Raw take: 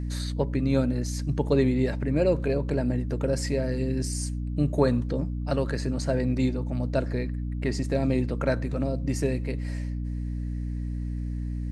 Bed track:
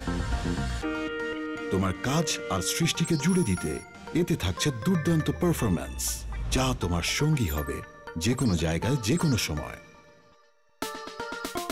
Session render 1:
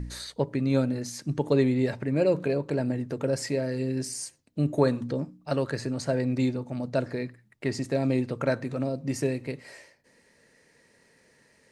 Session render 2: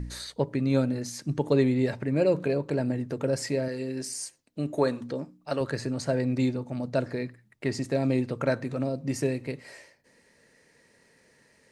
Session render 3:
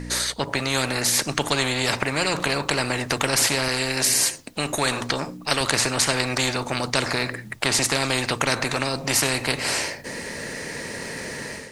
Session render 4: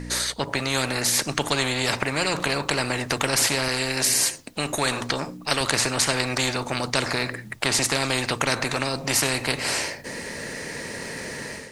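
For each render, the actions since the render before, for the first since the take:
de-hum 60 Hz, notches 5
3.68–5.61 s: peaking EQ 86 Hz -9.5 dB 2.7 oct
level rider gain up to 12.5 dB; spectrum-flattening compressor 4:1
trim -1 dB

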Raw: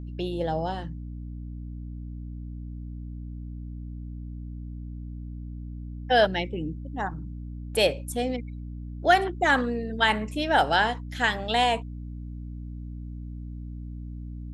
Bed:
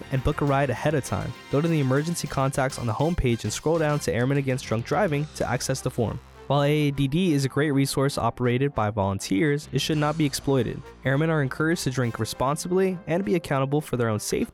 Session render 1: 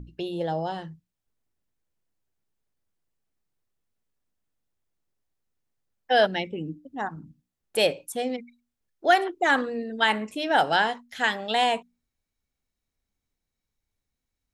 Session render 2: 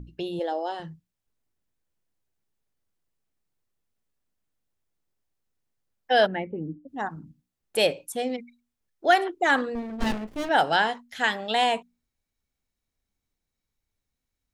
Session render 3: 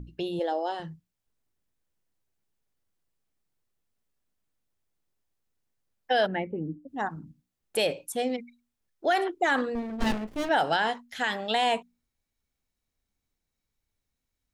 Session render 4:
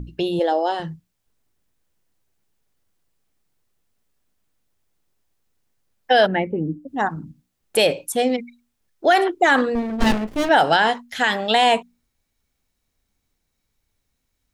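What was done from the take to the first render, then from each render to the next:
hum notches 60/120/180/240/300 Hz
0.39–0.80 s: brick-wall FIR high-pass 220 Hz; 6.26–6.87 s: low-pass 2.4 kHz -> 1 kHz 24 dB/octave; 9.75–10.49 s: sliding maximum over 33 samples
peak limiter -15.5 dBFS, peak gain reduction 8 dB
trim +9 dB

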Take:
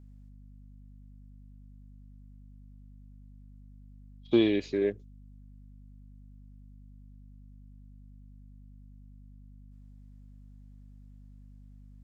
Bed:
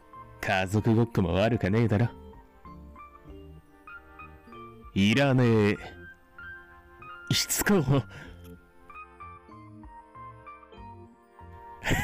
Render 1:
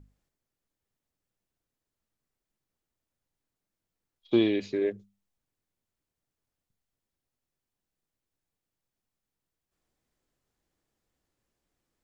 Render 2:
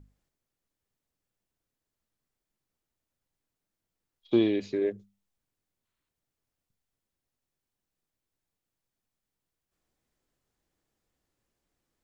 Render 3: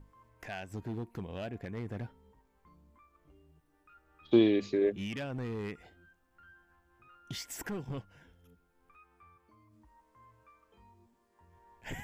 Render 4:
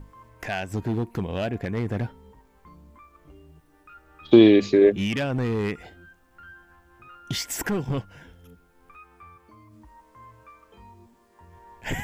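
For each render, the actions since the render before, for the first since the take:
hum notches 50/100/150/200/250 Hz
dynamic bell 2.6 kHz, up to -4 dB, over -43 dBFS, Q 0.73; 5.85–6.09 s: time-frequency box 900–4400 Hz +6 dB
add bed -15.5 dB
trim +12 dB; peak limiter -3 dBFS, peak gain reduction 3 dB

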